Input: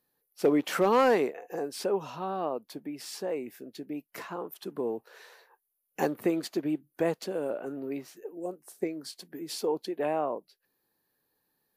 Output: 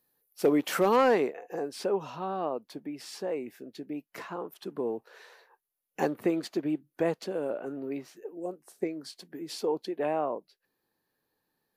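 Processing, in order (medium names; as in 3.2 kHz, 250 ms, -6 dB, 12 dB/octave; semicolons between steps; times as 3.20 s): treble shelf 8.5 kHz +5 dB, from 0.96 s -9 dB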